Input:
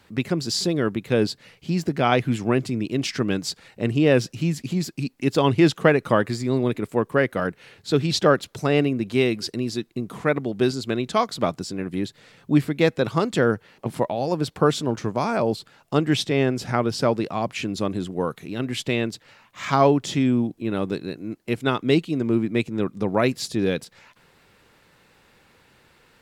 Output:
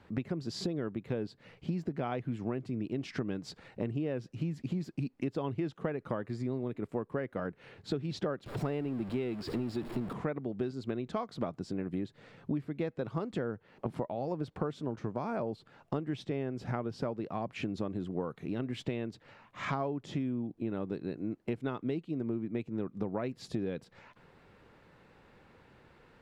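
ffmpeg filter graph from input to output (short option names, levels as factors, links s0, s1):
-filter_complex "[0:a]asettb=1/sr,asplit=3[s0][s1][s2];[s0]atrim=end=8.464[s3];[s1]atrim=start=8.46:end=10.13,asetpts=PTS-STARTPTS,afade=t=in:d=0.004:c=qsin,afade=t=out:st=1.666:d=0.004:c=qsin,aeval=exprs='val(0)+0.5*0.0422*sgn(val(0))':c=same,bandreject=f=6100:w=5.1[s4];[s2]atrim=start=10.126[s5];[s3][s4]acrossfade=d=0.004:c1=hsin:c2=qsin[s6];[s6][s5]acrossfade=d=0.004:c1=qsin:c2=hsin,lowpass=f=1100:p=1,acompressor=threshold=0.0282:ratio=10"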